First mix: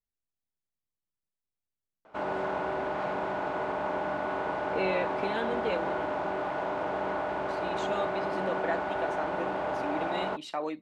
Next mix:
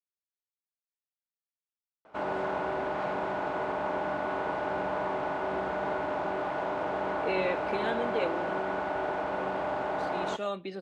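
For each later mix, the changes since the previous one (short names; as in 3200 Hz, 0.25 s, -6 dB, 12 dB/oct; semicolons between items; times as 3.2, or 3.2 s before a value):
speech: entry +2.50 s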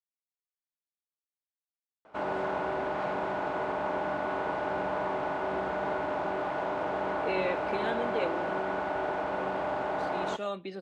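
speech: send -10.0 dB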